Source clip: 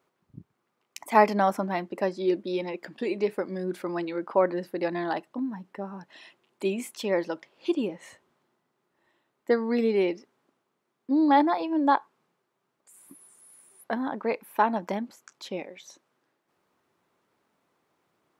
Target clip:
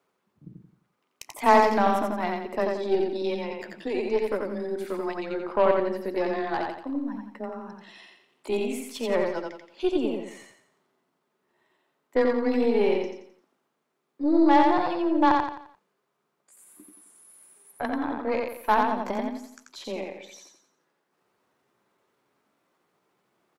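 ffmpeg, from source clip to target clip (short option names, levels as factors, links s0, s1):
-filter_complex "[0:a]afreqshift=20,aeval=exprs='0.501*(cos(1*acos(clip(val(0)/0.501,-1,1)))-cos(1*PI/2))+0.0141*(cos(3*acos(clip(val(0)/0.501,-1,1)))-cos(3*PI/2))+0.0251*(cos(8*acos(clip(val(0)/0.501,-1,1)))-cos(8*PI/2))':c=same,atempo=0.78,asplit=2[s0][s1];[s1]aecho=0:1:87|174|261|348|435:0.708|0.276|0.108|0.042|0.0164[s2];[s0][s2]amix=inputs=2:normalize=0"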